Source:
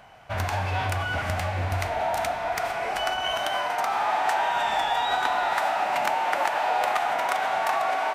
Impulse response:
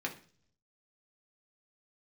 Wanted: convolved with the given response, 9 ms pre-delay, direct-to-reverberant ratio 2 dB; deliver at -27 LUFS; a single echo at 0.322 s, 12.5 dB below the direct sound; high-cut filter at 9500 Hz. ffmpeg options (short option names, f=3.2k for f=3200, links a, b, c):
-filter_complex "[0:a]lowpass=9.5k,aecho=1:1:322:0.237,asplit=2[a][b];[1:a]atrim=start_sample=2205,adelay=9[c];[b][c]afir=irnorm=-1:irlink=0,volume=-5.5dB[d];[a][d]amix=inputs=2:normalize=0,volume=-3dB"